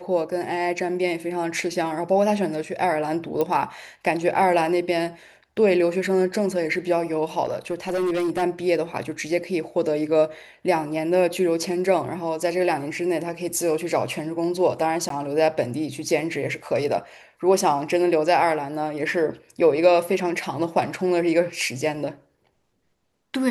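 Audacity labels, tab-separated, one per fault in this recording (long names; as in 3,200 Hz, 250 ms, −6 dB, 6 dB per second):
3.410000	3.410000	click −12 dBFS
7.450000	8.430000	clipping −20 dBFS
15.090000	15.100000	drop-out 13 ms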